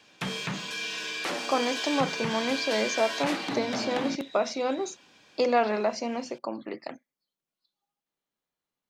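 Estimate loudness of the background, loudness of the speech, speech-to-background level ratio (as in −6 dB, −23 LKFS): −31.5 LKFS, −29.5 LKFS, 2.0 dB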